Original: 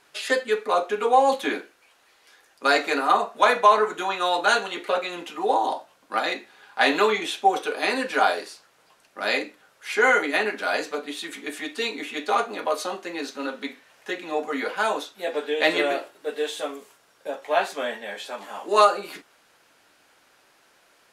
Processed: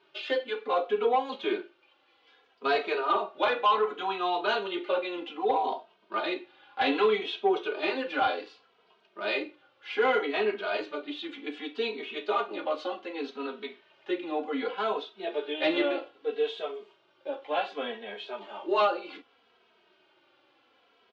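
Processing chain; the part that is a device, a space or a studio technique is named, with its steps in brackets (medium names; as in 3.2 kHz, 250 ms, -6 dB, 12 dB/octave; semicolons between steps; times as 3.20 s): barber-pole flanger into a guitar amplifier (endless flanger 2.8 ms -0.65 Hz; saturation -15 dBFS, distortion -16 dB; cabinet simulation 86–3800 Hz, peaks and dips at 150 Hz -7 dB, 370 Hz +8 dB, 1.8 kHz -7 dB, 3.1 kHz +5 dB); trim -2 dB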